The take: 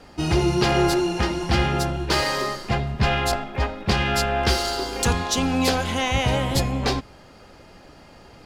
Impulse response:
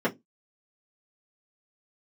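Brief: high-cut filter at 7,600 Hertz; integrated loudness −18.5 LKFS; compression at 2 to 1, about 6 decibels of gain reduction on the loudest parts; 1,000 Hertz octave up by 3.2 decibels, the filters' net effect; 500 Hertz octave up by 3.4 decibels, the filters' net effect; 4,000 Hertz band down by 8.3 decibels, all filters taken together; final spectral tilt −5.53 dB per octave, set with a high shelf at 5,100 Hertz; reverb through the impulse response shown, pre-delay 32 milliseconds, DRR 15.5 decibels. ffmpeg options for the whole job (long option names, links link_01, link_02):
-filter_complex "[0:a]lowpass=7600,equalizer=frequency=500:width_type=o:gain=4,equalizer=frequency=1000:width_type=o:gain=3.5,equalizer=frequency=4000:width_type=o:gain=-7.5,highshelf=frequency=5100:gain=-8.5,acompressor=threshold=-25dB:ratio=2,asplit=2[link_01][link_02];[1:a]atrim=start_sample=2205,adelay=32[link_03];[link_02][link_03]afir=irnorm=-1:irlink=0,volume=-28dB[link_04];[link_01][link_04]amix=inputs=2:normalize=0,volume=7.5dB"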